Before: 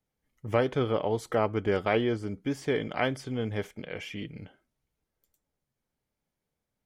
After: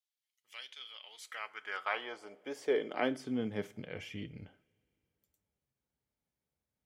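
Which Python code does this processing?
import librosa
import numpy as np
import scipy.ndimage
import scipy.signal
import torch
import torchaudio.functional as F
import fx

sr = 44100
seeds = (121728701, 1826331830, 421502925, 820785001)

y = fx.rev_double_slope(x, sr, seeds[0], early_s=0.36, late_s=2.8, knee_db=-22, drr_db=14.5)
y = fx.filter_sweep_highpass(y, sr, from_hz=3400.0, to_hz=60.0, start_s=0.93, end_s=4.39, q=1.8)
y = y * librosa.db_to_amplitude(-6.5)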